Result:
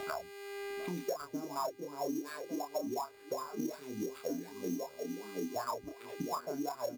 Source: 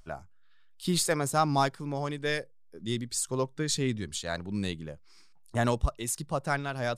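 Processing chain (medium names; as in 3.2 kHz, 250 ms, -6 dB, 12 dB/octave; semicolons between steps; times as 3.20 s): local Wiener filter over 25 samples; rippled EQ curve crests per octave 1.6, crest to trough 8 dB; repeats whose band climbs or falls 701 ms, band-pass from 280 Hz, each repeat 1.4 oct, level -3.5 dB; compression 3:1, threshold -30 dBFS, peak gain reduction 8.5 dB; wah-wah 2.7 Hz 250–1300 Hz, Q 12; mains buzz 400 Hz, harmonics 10, -70 dBFS -5 dB/octave; sample-rate reducer 6.1 kHz, jitter 0%; doubling 28 ms -4 dB; three bands compressed up and down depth 100%; trim +8 dB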